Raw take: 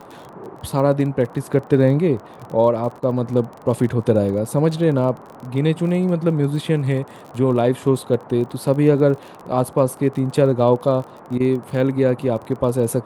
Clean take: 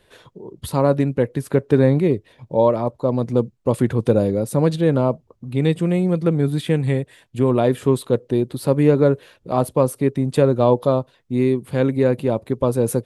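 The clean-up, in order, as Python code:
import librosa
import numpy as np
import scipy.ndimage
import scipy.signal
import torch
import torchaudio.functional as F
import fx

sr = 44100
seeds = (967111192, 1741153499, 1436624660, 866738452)

y = fx.fix_declick_ar(x, sr, threshold=6.5)
y = fx.fix_interpolate(y, sr, at_s=(3.0, 11.38), length_ms=21.0)
y = fx.noise_reduce(y, sr, print_start_s=0.02, print_end_s=0.52, reduce_db=13.0)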